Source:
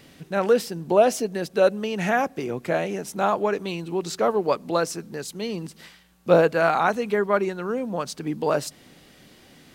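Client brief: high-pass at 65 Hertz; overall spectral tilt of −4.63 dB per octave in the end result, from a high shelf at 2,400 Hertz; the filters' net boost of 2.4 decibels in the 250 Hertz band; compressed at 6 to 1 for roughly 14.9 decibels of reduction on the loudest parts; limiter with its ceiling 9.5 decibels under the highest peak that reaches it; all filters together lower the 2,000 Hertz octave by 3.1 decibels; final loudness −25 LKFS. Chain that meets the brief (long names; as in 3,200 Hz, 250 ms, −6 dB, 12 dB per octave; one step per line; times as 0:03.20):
high-pass filter 65 Hz
parametric band 250 Hz +3.5 dB
parametric band 2,000 Hz −7.5 dB
high-shelf EQ 2,400 Hz +6 dB
downward compressor 6 to 1, threshold −28 dBFS
level +11.5 dB
brickwall limiter −15.5 dBFS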